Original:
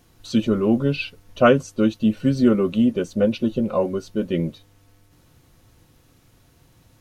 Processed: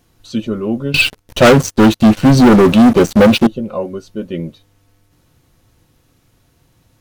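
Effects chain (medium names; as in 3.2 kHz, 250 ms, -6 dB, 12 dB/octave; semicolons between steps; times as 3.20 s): 0.94–3.47 s: waveshaping leveller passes 5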